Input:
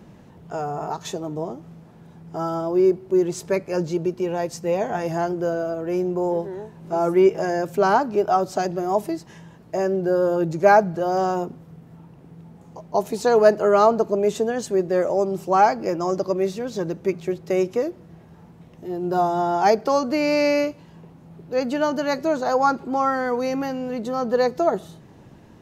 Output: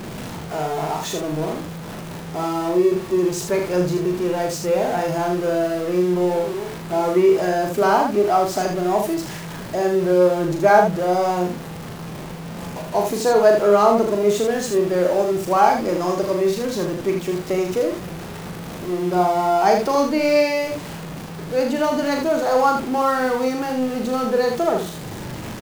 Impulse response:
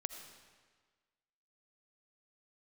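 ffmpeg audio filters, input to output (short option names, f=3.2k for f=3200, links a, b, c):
-filter_complex "[0:a]aeval=exprs='val(0)+0.5*0.0422*sgn(val(0))':c=same,asplit=2[a][b];[b]aecho=0:1:39|78:0.531|0.531[c];[a][c]amix=inputs=2:normalize=0,volume=-1dB"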